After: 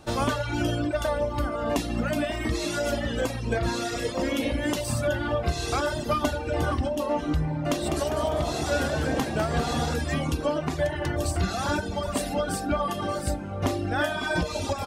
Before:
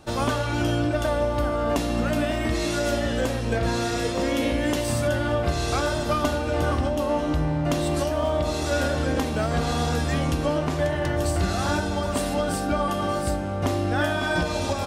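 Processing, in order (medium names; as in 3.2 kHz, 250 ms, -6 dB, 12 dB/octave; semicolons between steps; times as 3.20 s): reverb removal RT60 1.3 s; 7.61–9.94 s: frequency-shifting echo 200 ms, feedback 56%, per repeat +65 Hz, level -7.5 dB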